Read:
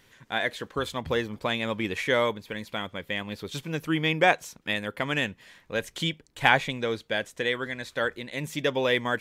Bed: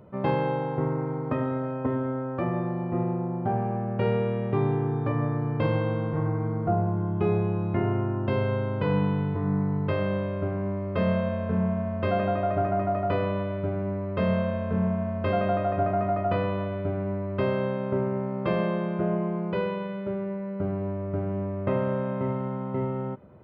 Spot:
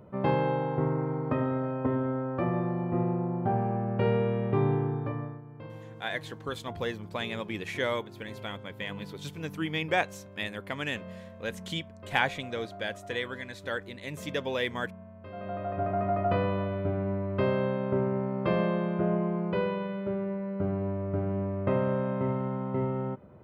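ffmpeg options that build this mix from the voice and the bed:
ffmpeg -i stem1.wav -i stem2.wav -filter_complex "[0:a]adelay=5700,volume=-6dB[link_01];[1:a]volume=17dB,afade=type=out:start_time=4.73:duration=0.69:silence=0.125893,afade=type=in:start_time=15.31:duration=0.93:silence=0.125893[link_02];[link_01][link_02]amix=inputs=2:normalize=0" out.wav

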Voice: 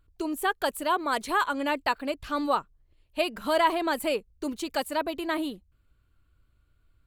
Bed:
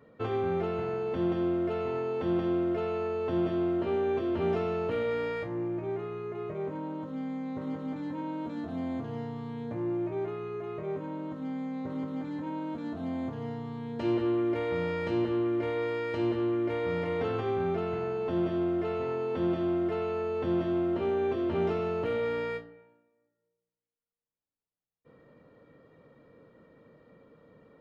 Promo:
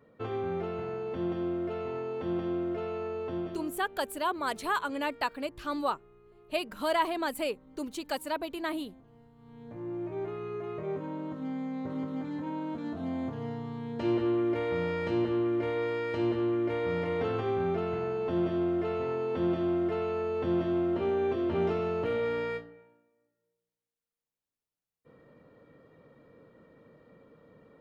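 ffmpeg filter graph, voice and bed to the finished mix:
ffmpeg -i stem1.wav -i stem2.wav -filter_complex "[0:a]adelay=3350,volume=-4.5dB[link_01];[1:a]volume=18dB,afade=type=out:start_time=3.2:duration=0.62:silence=0.125893,afade=type=in:start_time=9.36:duration=1.15:silence=0.0841395[link_02];[link_01][link_02]amix=inputs=2:normalize=0" out.wav

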